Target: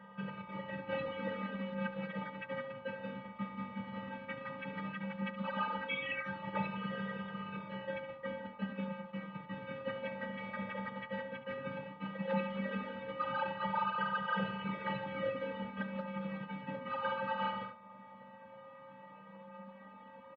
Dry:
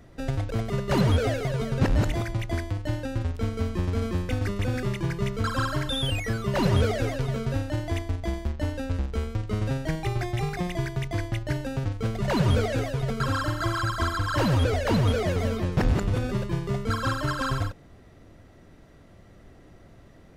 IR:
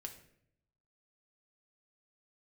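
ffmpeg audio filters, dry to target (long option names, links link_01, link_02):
-filter_complex "[0:a]aemphasis=mode=production:type=50fm,acompressor=threshold=-39dB:ratio=2,aeval=exprs='val(0)+0.00251*sin(2*PI*1200*n/s)':channel_layout=same,afftfilt=real='hypot(re,im)*cos(2*PI*random(0))':imag='hypot(re,im)*sin(2*PI*random(1))':win_size=512:overlap=0.75,asplit=3[link_01][link_02][link_03];[link_02]asetrate=29433,aresample=44100,atempo=1.49831,volume=-5dB[link_04];[link_03]asetrate=35002,aresample=44100,atempo=1.25992,volume=-8dB[link_05];[link_01][link_04][link_05]amix=inputs=3:normalize=0,afftfilt=real='hypot(re,im)*cos(PI*b)':imag='0':win_size=512:overlap=0.75,flanger=delay=3.5:depth=4.4:regen=-3:speed=0.14:shape=sinusoidal,aecho=1:1:71:0.224,highpass=frequency=320:width_type=q:width=0.5412,highpass=frequency=320:width_type=q:width=1.307,lowpass=frequency=2900:width_type=q:width=0.5176,lowpass=frequency=2900:width_type=q:width=0.7071,lowpass=frequency=2900:width_type=q:width=1.932,afreqshift=-150,volume=12.5dB"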